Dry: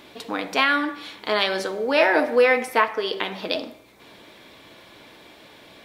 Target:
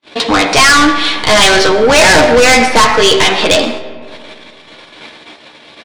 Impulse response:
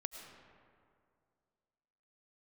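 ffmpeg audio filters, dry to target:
-filter_complex "[0:a]asplit=2[link_01][link_02];[link_02]adelay=13,volume=-5dB[link_03];[link_01][link_03]amix=inputs=2:normalize=0,acrossover=split=4600[link_04][link_05];[link_04]asplit=2[link_06][link_07];[link_07]highpass=frequency=720:poles=1,volume=26dB,asoftclip=type=tanh:threshold=-3dB[link_08];[link_06][link_08]amix=inputs=2:normalize=0,lowpass=frequency=3100:poles=1,volume=-6dB[link_09];[link_05]acompressor=threshold=-49dB:ratio=6[link_10];[link_09][link_10]amix=inputs=2:normalize=0,aresample=22050,aresample=44100,acontrast=27,agate=range=-53dB:threshold=-23dB:ratio=16:detection=peak,bass=frequency=250:gain=9,treble=frequency=4000:gain=15,asplit=2[link_11][link_12];[1:a]atrim=start_sample=2205[link_13];[link_12][link_13]afir=irnorm=-1:irlink=0,volume=-3.5dB[link_14];[link_11][link_14]amix=inputs=2:normalize=0,volume=-3dB,asoftclip=hard,volume=3dB,volume=-4.5dB"

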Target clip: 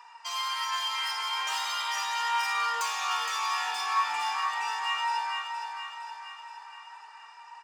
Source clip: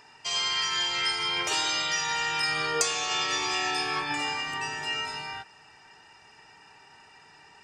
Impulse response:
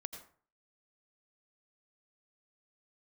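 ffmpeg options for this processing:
-filter_complex "[0:a]asoftclip=type=tanh:threshold=-27dB,flanger=delay=4.2:depth=2.3:regen=50:speed=0.4:shape=sinusoidal,highpass=frequency=1000:width_type=q:width=4.9,asplit=2[link_01][link_02];[link_02]aecho=0:1:466|932|1398|1864|2330|2796|3262:0.447|0.255|0.145|0.0827|0.0472|0.0269|0.0153[link_03];[link_01][link_03]amix=inputs=2:normalize=0"

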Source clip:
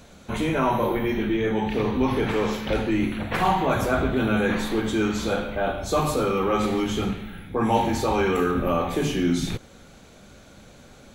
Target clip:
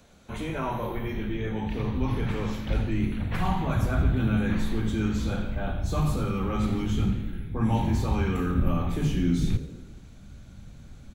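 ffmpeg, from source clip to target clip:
ffmpeg -i in.wav -filter_complex "[0:a]asubboost=boost=7.5:cutoff=160,acrossover=split=160|3100[link_01][link_02][link_03];[link_03]asoftclip=type=hard:threshold=-32.5dB[link_04];[link_01][link_02][link_04]amix=inputs=3:normalize=0,asplit=6[link_05][link_06][link_07][link_08][link_09][link_10];[link_06]adelay=86,afreqshift=52,volume=-15dB[link_11];[link_07]adelay=172,afreqshift=104,volume=-20.5dB[link_12];[link_08]adelay=258,afreqshift=156,volume=-26dB[link_13];[link_09]adelay=344,afreqshift=208,volume=-31.5dB[link_14];[link_10]adelay=430,afreqshift=260,volume=-37.1dB[link_15];[link_05][link_11][link_12][link_13][link_14][link_15]amix=inputs=6:normalize=0,volume=-8dB" out.wav

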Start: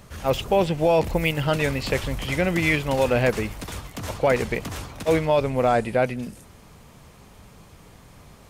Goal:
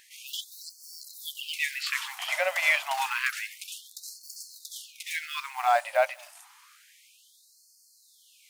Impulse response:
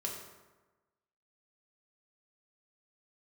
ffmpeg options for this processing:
-af "acrusher=bits=8:mode=log:mix=0:aa=0.000001,afftfilt=real='re*gte(b*sr/1024,530*pow(4300/530,0.5+0.5*sin(2*PI*0.29*pts/sr)))':imag='im*gte(b*sr/1024,530*pow(4300/530,0.5+0.5*sin(2*PI*0.29*pts/sr)))':win_size=1024:overlap=0.75"

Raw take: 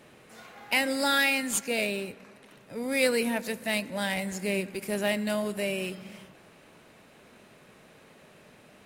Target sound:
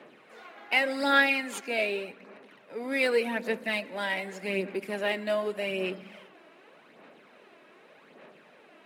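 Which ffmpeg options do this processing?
ffmpeg -i in.wav -filter_complex "[0:a]highpass=110,acrossover=split=210 3800:gain=0.0794 1 0.178[link_01][link_02][link_03];[link_01][link_02][link_03]amix=inputs=3:normalize=0,aphaser=in_gain=1:out_gain=1:delay=3.1:decay=0.47:speed=0.85:type=sinusoidal" out.wav

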